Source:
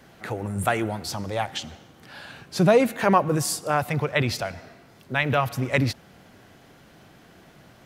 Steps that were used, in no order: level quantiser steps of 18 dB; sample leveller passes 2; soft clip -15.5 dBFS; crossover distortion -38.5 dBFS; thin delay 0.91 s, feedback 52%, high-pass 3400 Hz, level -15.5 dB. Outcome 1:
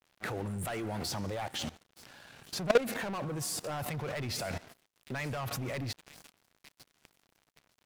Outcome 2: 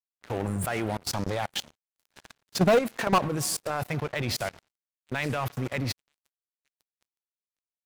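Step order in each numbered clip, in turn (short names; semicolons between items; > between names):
soft clip > thin delay > sample leveller > crossover distortion > level quantiser; thin delay > crossover distortion > level quantiser > sample leveller > soft clip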